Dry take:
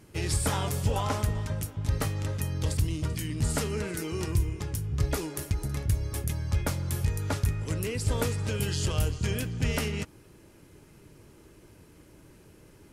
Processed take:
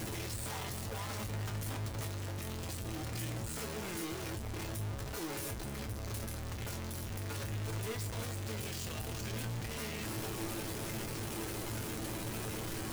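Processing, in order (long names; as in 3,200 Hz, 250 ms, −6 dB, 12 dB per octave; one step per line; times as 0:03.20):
sign of each sample alone
brickwall limiter −34 dBFS, peak gain reduction 4 dB
tuned comb filter 110 Hz, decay 0.22 s, harmonics all, mix 80%
level +1.5 dB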